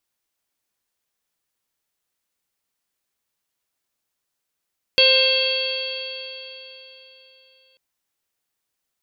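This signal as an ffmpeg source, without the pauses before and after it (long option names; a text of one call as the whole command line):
ffmpeg -f lavfi -i "aevalsrc='0.133*pow(10,-3*t/3.6)*sin(2*PI*521.65*t)+0.0168*pow(10,-3*t/3.6)*sin(2*PI*1047.2*t)+0.0282*pow(10,-3*t/3.6)*sin(2*PI*1580.49*t)+0.0299*pow(10,-3*t/3.6)*sin(2*PI*2125.27*t)+0.141*pow(10,-3*t/3.6)*sin(2*PI*2685.17*t)+0.168*pow(10,-3*t/3.6)*sin(2*PI*3263.64*t)+0.0237*pow(10,-3*t/3.6)*sin(2*PI*3863.93*t)+0.168*pow(10,-3*t/3.6)*sin(2*PI*4489.07*t)':duration=2.79:sample_rate=44100" out.wav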